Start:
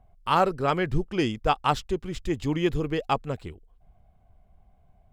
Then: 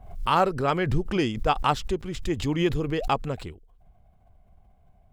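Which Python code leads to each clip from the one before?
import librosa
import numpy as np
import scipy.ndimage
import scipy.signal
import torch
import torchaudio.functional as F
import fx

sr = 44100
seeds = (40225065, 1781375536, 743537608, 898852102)

y = fx.pre_swell(x, sr, db_per_s=85.0)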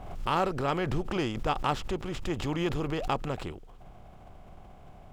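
y = fx.bin_compress(x, sr, power=0.6)
y = y * 10.0 ** (-8.0 / 20.0)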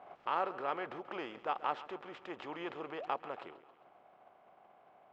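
y = fx.bandpass_edges(x, sr, low_hz=520.0, high_hz=2200.0)
y = fx.echo_feedback(y, sr, ms=135, feedback_pct=56, wet_db=-16.5)
y = y * 10.0 ** (-5.0 / 20.0)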